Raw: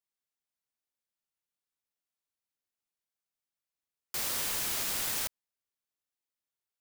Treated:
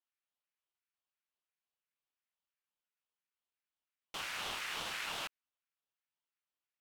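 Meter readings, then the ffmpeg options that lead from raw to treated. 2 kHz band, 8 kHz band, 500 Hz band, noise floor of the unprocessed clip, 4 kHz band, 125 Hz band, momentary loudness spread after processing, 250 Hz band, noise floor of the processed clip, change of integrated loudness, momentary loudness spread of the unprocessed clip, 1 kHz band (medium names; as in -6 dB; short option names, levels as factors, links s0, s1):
0.0 dB, -14.5 dB, -4.5 dB, under -85 dBFS, -3.5 dB, -9.0 dB, 6 LU, -7.5 dB, under -85 dBFS, -9.0 dB, 6 LU, 0.0 dB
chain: -af "bandpass=f=2000:t=q:w=2.3:csg=0,aeval=exprs='val(0)*sin(2*PI*730*n/s+730*0.5/2.9*sin(2*PI*2.9*n/s))':c=same,volume=2.37"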